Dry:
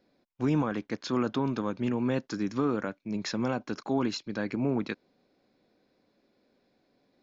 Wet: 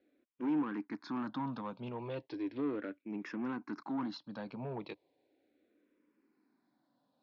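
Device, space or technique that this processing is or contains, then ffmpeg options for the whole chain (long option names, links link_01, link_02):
barber-pole phaser into a guitar amplifier: -filter_complex "[0:a]asplit=2[link_01][link_02];[link_02]afreqshift=-0.36[link_03];[link_01][link_03]amix=inputs=2:normalize=1,asoftclip=type=tanh:threshold=-28.5dB,highpass=86,equalizer=frequency=99:width_type=q:width=4:gain=-9,equalizer=frequency=180:width_type=q:width=4:gain=-4,equalizer=frequency=300:width_type=q:width=4:gain=7,equalizer=frequency=950:width_type=q:width=4:gain=5,lowpass=frequency=4100:width=0.5412,lowpass=frequency=4100:width=1.3066,volume=-5dB"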